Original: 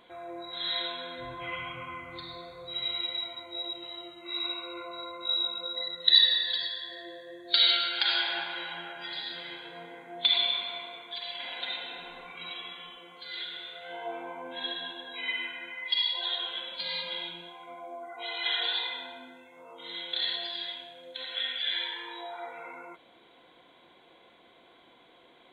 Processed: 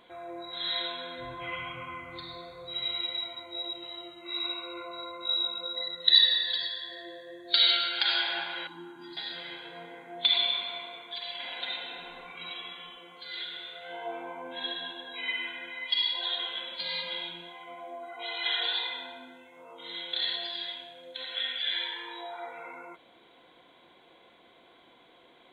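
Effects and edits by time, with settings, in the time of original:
8.67–9.17 EQ curve 210 Hz 0 dB, 310 Hz +13 dB, 620 Hz -28 dB, 910 Hz -2 dB, 2200 Hz -18 dB, 3200 Hz -15 dB, 6400 Hz 0 dB
14.88–15.87 echo throw 0.58 s, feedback 65%, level -11.5 dB

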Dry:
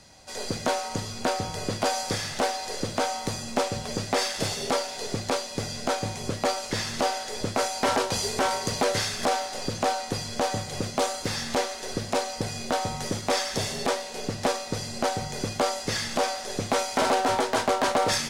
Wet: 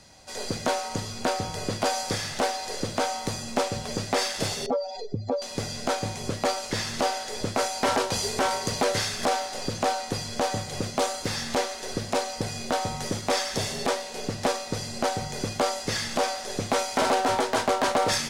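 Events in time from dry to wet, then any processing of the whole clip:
4.66–5.42 spectral contrast raised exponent 2.4

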